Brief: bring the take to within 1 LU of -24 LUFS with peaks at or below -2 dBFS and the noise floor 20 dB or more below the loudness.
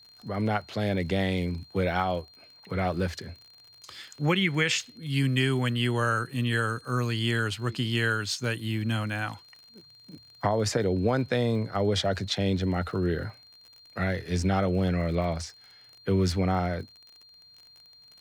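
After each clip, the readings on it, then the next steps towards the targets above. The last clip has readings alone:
ticks 43/s; steady tone 4200 Hz; tone level -52 dBFS; loudness -28.0 LUFS; peak -12.0 dBFS; loudness target -24.0 LUFS
-> de-click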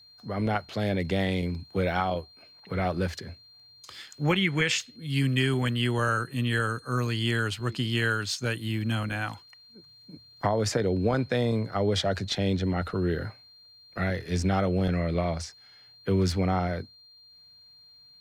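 ticks 0.22/s; steady tone 4200 Hz; tone level -52 dBFS
-> notch 4200 Hz, Q 30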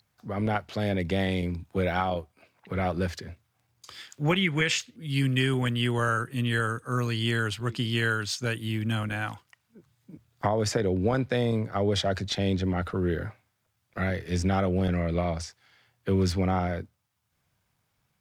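steady tone none; loudness -28.0 LUFS; peak -12.0 dBFS; loudness target -24.0 LUFS
-> gain +4 dB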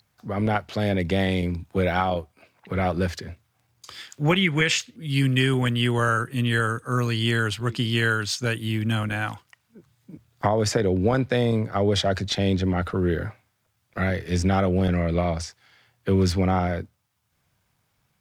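loudness -24.0 LUFS; peak -8.0 dBFS; noise floor -71 dBFS

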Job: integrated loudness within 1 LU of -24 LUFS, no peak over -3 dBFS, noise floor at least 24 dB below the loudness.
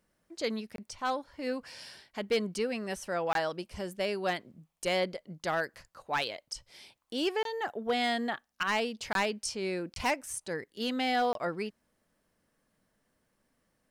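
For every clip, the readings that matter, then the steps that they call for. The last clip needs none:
clipped 0.4%; flat tops at -22.0 dBFS; dropouts 6; longest dropout 22 ms; loudness -33.0 LUFS; peak -22.0 dBFS; loudness target -24.0 LUFS
-> clip repair -22 dBFS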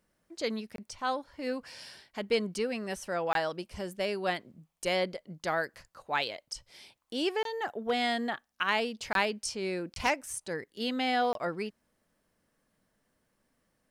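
clipped 0.0%; dropouts 6; longest dropout 22 ms
-> interpolate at 0.76/3.33/7.43/9.13/9.94/11.33, 22 ms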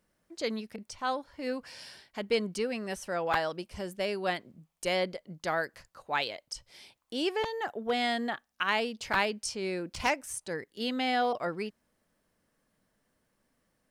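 dropouts 0; loudness -32.5 LUFS; peak -13.0 dBFS; loudness target -24.0 LUFS
-> gain +8.5 dB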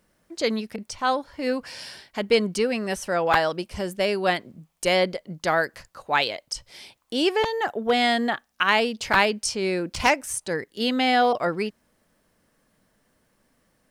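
loudness -24.0 LUFS; peak -4.5 dBFS; noise floor -69 dBFS

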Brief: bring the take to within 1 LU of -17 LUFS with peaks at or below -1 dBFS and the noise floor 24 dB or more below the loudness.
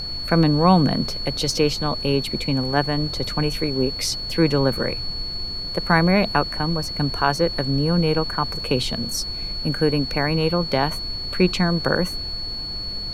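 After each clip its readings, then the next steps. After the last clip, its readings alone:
steady tone 4400 Hz; tone level -28 dBFS; noise floor -30 dBFS; noise floor target -46 dBFS; loudness -21.5 LUFS; peak -2.5 dBFS; loudness target -17.0 LUFS
-> notch 4400 Hz, Q 30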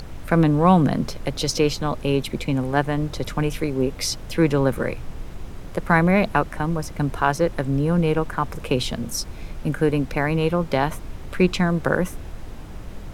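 steady tone none; noise floor -36 dBFS; noise floor target -46 dBFS
-> noise print and reduce 10 dB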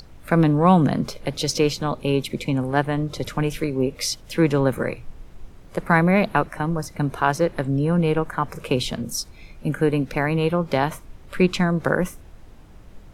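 noise floor -45 dBFS; noise floor target -47 dBFS
-> noise print and reduce 6 dB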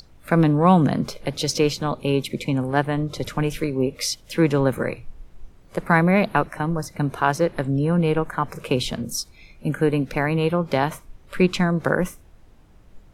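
noise floor -50 dBFS; loudness -22.5 LUFS; peak -3.0 dBFS; loudness target -17.0 LUFS
-> gain +5.5 dB; limiter -1 dBFS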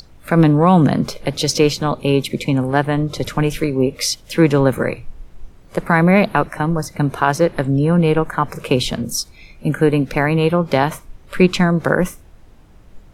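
loudness -17.0 LUFS; peak -1.0 dBFS; noise floor -45 dBFS

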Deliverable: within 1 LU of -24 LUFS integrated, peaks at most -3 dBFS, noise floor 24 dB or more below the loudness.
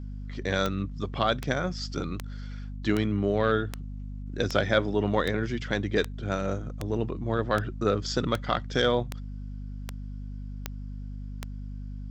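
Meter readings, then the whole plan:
clicks 15; hum 50 Hz; harmonics up to 250 Hz; hum level -34 dBFS; loudness -28.5 LUFS; peak -8.5 dBFS; loudness target -24.0 LUFS
-> de-click; de-hum 50 Hz, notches 5; gain +4.5 dB

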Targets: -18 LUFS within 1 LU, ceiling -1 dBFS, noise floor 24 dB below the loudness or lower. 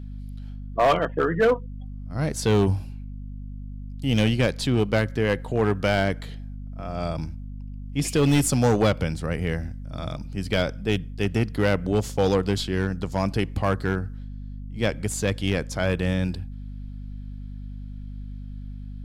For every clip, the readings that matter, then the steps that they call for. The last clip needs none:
clipped 1.2%; flat tops at -14.0 dBFS; hum 50 Hz; harmonics up to 250 Hz; hum level -33 dBFS; loudness -24.5 LUFS; peak -14.0 dBFS; loudness target -18.0 LUFS
-> clip repair -14 dBFS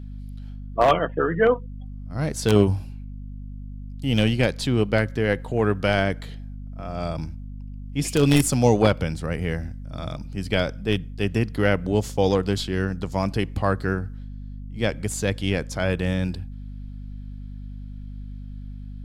clipped 0.0%; hum 50 Hz; harmonics up to 250 Hz; hum level -33 dBFS
-> notches 50/100/150/200/250 Hz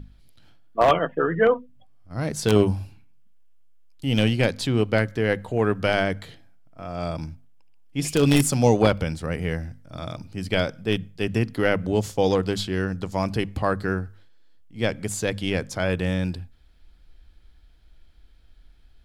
hum none; loudness -24.0 LUFS; peak -4.5 dBFS; loudness target -18.0 LUFS
-> gain +6 dB; limiter -1 dBFS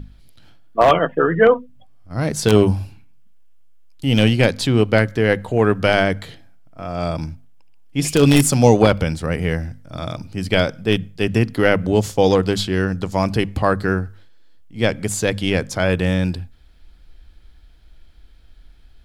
loudness -18.0 LUFS; peak -1.0 dBFS; noise floor -47 dBFS

